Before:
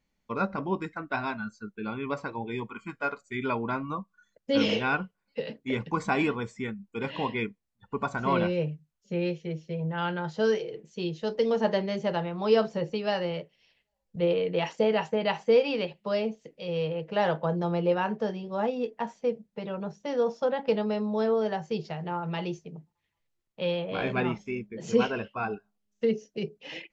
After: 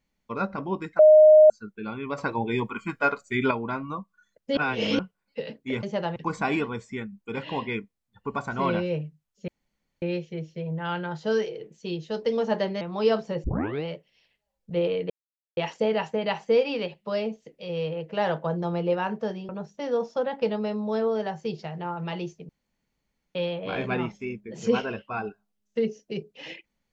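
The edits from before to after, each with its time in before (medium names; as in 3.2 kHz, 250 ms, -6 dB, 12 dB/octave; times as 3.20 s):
0.99–1.50 s: bleep 617 Hz -9.5 dBFS
2.18–3.51 s: gain +7 dB
4.57–4.99 s: reverse
9.15 s: insert room tone 0.54 s
11.94–12.27 s: move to 5.83 s
12.90 s: tape start 0.41 s
14.56 s: insert silence 0.47 s
18.48–19.75 s: delete
22.75–23.61 s: room tone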